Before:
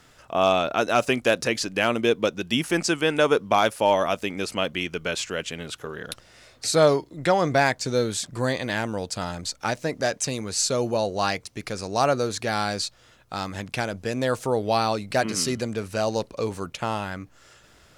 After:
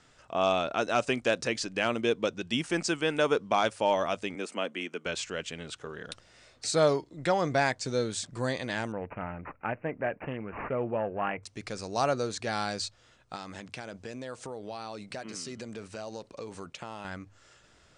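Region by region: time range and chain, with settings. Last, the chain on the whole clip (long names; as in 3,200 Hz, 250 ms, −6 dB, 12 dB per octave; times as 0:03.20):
0:04.35–0:05.06: Butterworth high-pass 200 Hz + parametric band 4,600 Hz −9 dB 0.82 octaves
0:08.92–0:11.43: high-frequency loss of the air 120 metres + bad sample-rate conversion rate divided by 8×, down none, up filtered + highs frequency-modulated by the lows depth 0.11 ms
0:13.35–0:17.05: downward compressor, threshold −29 dBFS + low-shelf EQ 83 Hz −10.5 dB
whole clip: Butterworth low-pass 9,500 Hz 96 dB per octave; mains-hum notches 50/100 Hz; level −6 dB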